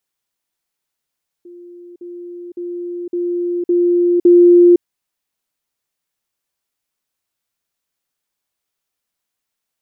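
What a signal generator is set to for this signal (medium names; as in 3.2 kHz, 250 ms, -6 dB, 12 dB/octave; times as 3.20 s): level ladder 350 Hz -34.5 dBFS, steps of 6 dB, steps 6, 0.51 s 0.05 s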